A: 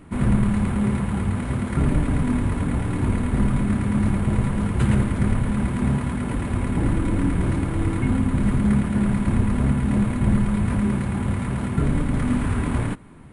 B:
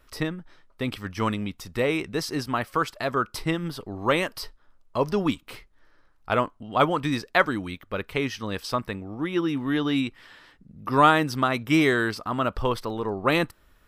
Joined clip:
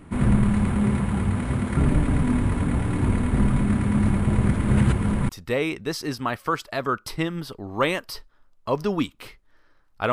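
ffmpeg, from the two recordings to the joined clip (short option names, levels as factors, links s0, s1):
-filter_complex "[0:a]apad=whole_dur=10.12,atrim=end=10.12,asplit=2[s0][s1];[s0]atrim=end=4.432[s2];[s1]atrim=start=4.428:end=5.292,asetpts=PTS-STARTPTS,areverse[s3];[1:a]atrim=start=1.568:end=6.4[s4];[s2][s3]acrossfade=d=0.004:c1=hsin:c2=hsin[s5];[s5][s4]acrossfade=d=0.004:c1=hsin:c2=hsin"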